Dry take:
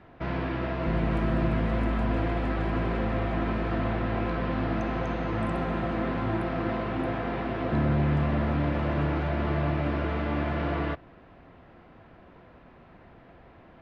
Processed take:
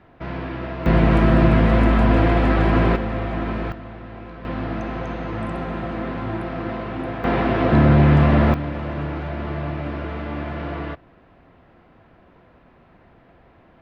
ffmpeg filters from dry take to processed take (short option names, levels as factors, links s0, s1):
-af "asetnsamples=n=441:p=0,asendcmd='0.86 volume volume 11dB;2.96 volume volume 3dB;3.72 volume volume -8.5dB;4.45 volume volume 1.5dB;7.24 volume volume 11dB;8.54 volume volume 0dB',volume=1.12"